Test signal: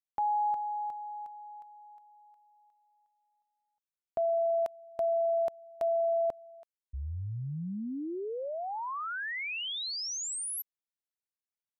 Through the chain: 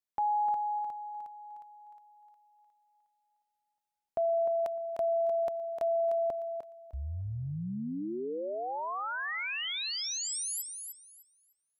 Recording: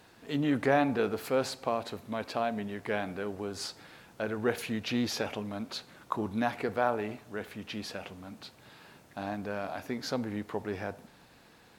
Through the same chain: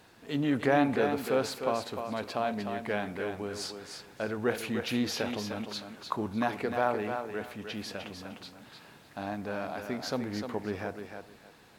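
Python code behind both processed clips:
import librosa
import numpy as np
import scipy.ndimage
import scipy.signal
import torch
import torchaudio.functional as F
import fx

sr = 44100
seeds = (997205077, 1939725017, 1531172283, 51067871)

y = fx.echo_thinned(x, sr, ms=303, feedback_pct=22, hz=170.0, wet_db=-6.5)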